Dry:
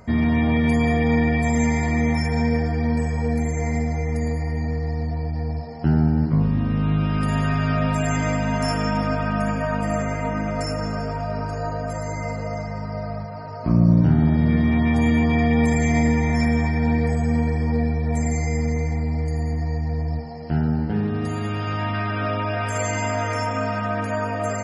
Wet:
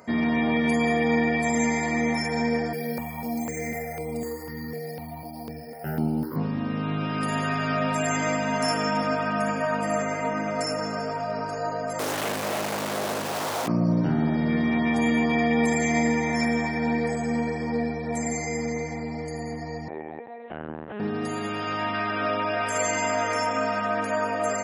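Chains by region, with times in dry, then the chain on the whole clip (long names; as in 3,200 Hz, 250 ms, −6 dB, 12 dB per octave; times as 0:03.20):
0:02.73–0:06.36: high-shelf EQ 6,400 Hz +6.5 dB + bad sample-rate conversion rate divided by 3×, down filtered, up hold + step-sequenced phaser 4 Hz 280–6,000 Hz
0:11.99–0:13.68: log-companded quantiser 2 bits + highs frequency-modulated by the lows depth 0.8 ms
0:19.88–0:21.00: high-pass filter 370 Hz 6 dB per octave + linear-prediction vocoder at 8 kHz pitch kept
whole clip: high-pass filter 250 Hz 12 dB per octave; high-shelf EQ 7,200 Hz +4.5 dB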